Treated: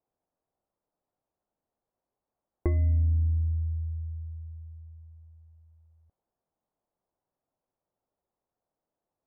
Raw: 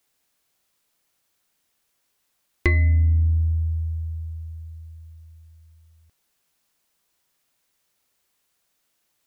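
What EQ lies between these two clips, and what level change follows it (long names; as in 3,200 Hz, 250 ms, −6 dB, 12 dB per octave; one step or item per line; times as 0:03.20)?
low-pass with resonance 750 Hz, resonance Q 1.6
high-frequency loss of the air 350 metres
−6.0 dB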